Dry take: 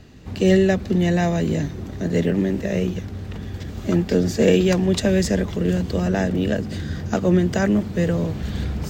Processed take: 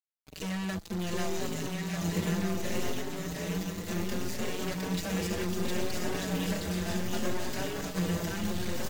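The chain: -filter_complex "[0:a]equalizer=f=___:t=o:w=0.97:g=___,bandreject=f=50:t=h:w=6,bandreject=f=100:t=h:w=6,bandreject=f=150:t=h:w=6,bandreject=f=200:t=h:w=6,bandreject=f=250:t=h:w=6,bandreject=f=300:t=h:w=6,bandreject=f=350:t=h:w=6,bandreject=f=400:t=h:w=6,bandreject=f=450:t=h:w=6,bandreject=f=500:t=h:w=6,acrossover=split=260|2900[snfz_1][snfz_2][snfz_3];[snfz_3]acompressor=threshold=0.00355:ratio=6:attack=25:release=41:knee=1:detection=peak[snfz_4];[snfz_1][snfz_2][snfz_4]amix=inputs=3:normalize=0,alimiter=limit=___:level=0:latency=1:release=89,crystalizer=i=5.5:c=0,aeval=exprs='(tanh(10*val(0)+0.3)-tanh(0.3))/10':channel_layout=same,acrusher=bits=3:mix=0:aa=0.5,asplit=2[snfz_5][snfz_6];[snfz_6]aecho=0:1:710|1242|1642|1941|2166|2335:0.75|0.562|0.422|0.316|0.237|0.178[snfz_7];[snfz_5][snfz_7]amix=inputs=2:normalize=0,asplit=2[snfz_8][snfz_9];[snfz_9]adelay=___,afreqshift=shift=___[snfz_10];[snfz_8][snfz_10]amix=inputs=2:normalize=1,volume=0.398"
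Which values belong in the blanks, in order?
200, 2, 0.282, 5, 0.67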